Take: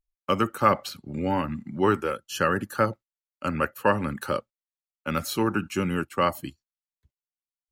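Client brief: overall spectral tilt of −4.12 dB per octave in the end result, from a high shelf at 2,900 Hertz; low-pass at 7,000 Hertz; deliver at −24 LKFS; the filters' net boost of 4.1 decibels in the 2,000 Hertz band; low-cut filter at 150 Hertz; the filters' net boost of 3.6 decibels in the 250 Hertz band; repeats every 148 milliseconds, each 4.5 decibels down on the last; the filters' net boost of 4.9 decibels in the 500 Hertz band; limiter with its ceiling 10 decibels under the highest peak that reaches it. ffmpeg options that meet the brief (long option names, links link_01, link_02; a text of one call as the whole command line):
ffmpeg -i in.wav -af "highpass=150,lowpass=7000,equalizer=frequency=250:width_type=o:gain=4,equalizer=frequency=500:width_type=o:gain=4.5,equalizer=frequency=2000:width_type=o:gain=4,highshelf=frequency=2900:gain=3.5,alimiter=limit=-13.5dB:level=0:latency=1,aecho=1:1:148|296|444|592|740|888|1036|1184|1332:0.596|0.357|0.214|0.129|0.0772|0.0463|0.0278|0.0167|0.01,volume=1.5dB" out.wav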